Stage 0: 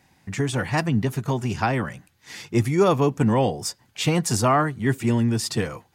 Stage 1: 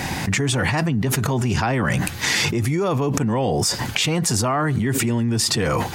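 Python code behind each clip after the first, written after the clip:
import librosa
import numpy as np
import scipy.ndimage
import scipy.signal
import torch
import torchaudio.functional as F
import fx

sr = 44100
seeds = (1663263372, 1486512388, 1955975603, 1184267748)

y = fx.high_shelf(x, sr, hz=12000.0, db=-4.0)
y = fx.env_flatten(y, sr, amount_pct=100)
y = F.gain(torch.from_numpy(y), -6.0).numpy()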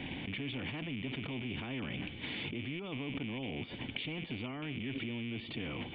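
y = fx.rattle_buzz(x, sr, strikes_db=-23.0, level_db=-20.0)
y = fx.formant_cascade(y, sr, vowel='i')
y = fx.spectral_comp(y, sr, ratio=2.0)
y = F.gain(torch.from_numpy(y), -4.0).numpy()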